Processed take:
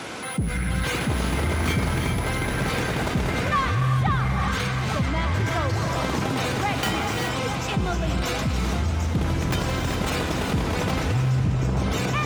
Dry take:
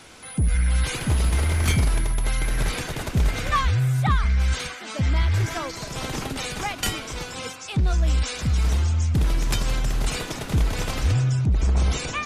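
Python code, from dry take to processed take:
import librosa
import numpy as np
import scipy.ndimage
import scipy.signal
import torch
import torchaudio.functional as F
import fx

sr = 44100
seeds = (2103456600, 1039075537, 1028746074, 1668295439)

y = fx.tracing_dist(x, sr, depth_ms=0.076)
y = scipy.signal.sosfilt(scipy.signal.butter(2, 130.0, 'highpass', fs=sr, output='sos'), y)
y = fx.high_shelf(y, sr, hz=3100.0, db=-9.0)
y = fx.echo_filtered(y, sr, ms=857, feedback_pct=73, hz=2000.0, wet_db=-11.0)
y = fx.rev_gated(y, sr, seeds[0], gate_ms=430, shape='rising', drr_db=4.5)
y = fx.env_flatten(y, sr, amount_pct=50)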